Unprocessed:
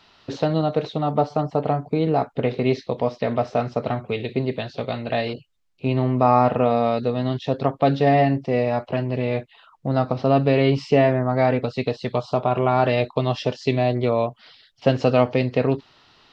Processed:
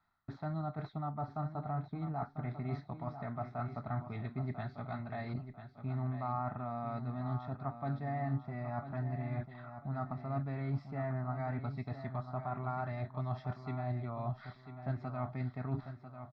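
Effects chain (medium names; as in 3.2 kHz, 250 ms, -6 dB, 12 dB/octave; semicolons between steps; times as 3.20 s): gate with hold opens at -42 dBFS; treble shelf 2.1 kHz +8 dB; comb 1.5 ms, depth 31%; reverse; compression 4:1, threshold -35 dBFS, peak gain reduction 20.5 dB; reverse; distance through air 490 m; static phaser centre 1.2 kHz, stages 4; on a send: feedback delay 995 ms, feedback 32%, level -10 dB; on the sum: trim +2.5 dB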